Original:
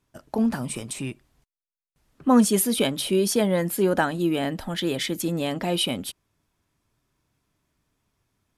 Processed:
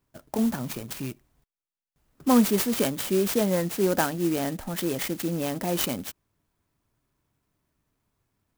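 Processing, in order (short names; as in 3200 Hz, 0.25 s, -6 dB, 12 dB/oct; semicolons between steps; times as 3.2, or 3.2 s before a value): clock jitter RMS 0.069 ms; gain -2 dB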